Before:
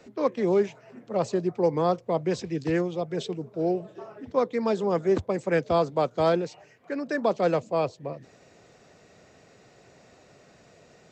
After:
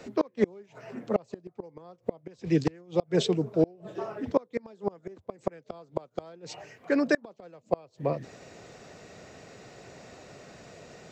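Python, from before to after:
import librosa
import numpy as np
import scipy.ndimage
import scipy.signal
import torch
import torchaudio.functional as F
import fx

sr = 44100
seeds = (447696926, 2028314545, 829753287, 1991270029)

y = fx.gate_flip(x, sr, shuts_db=-18.0, range_db=-32)
y = F.gain(torch.from_numpy(y), 6.5).numpy()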